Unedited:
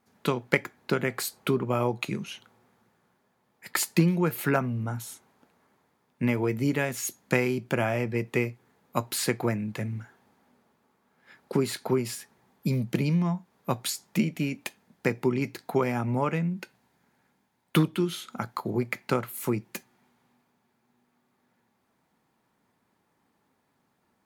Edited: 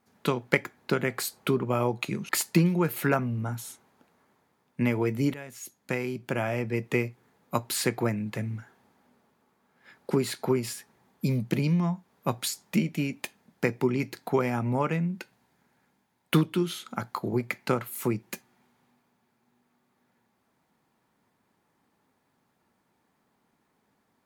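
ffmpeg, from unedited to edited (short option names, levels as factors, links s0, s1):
-filter_complex "[0:a]asplit=3[s0][s1][s2];[s0]atrim=end=2.292[s3];[s1]atrim=start=3.708:end=6.76,asetpts=PTS-STARTPTS,afade=t=out:st=3.048:d=0.004:c=hsin:silence=0.16788[s4];[s2]atrim=start=6.76,asetpts=PTS-STARTPTS,afade=t=in:d=1.53:silence=0.16788[s5];[s4][s5]concat=n=2:v=0:a=1[s6];[s3][s6]acrossfade=d=0.004:c1=hsin:c2=hsin"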